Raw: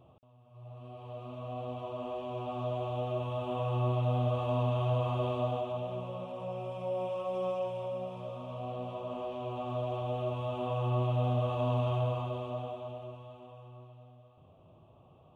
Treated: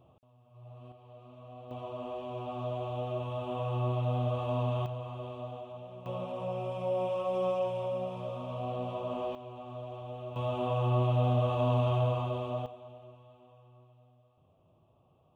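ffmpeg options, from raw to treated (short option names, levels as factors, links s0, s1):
-af "asetnsamples=n=441:p=0,asendcmd='0.92 volume volume -9dB;1.71 volume volume -1dB;4.86 volume volume -9dB;6.06 volume volume 3dB;9.35 volume volume -7.5dB;10.36 volume volume 2.5dB;12.66 volume volume -7.5dB',volume=0.794"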